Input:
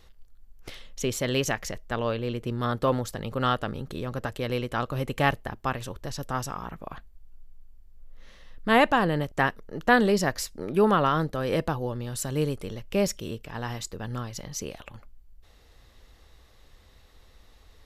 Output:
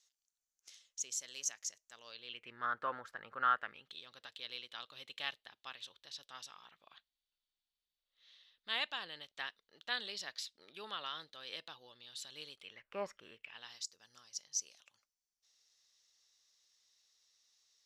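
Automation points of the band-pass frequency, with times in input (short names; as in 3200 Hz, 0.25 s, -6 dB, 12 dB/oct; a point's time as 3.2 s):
band-pass, Q 3.9
1.99 s 6500 Hz
2.64 s 1500 Hz
3.54 s 1500 Hz
3.95 s 3700 Hz
12.57 s 3700 Hz
13.02 s 1000 Hz
13.88 s 5800 Hz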